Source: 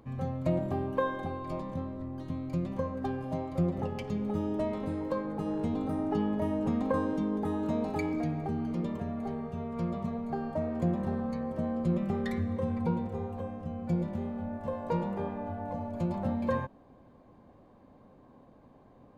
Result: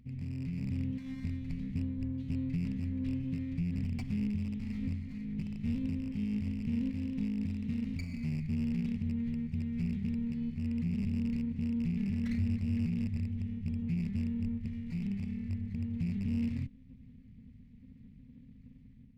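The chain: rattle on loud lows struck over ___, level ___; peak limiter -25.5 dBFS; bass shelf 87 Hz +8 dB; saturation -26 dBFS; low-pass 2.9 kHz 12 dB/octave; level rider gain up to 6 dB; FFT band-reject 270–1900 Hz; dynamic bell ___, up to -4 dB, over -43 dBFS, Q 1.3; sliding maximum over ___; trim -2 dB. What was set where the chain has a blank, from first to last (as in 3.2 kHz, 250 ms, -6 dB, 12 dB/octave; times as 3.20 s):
-33 dBFS, -37 dBFS, 150 Hz, 9 samples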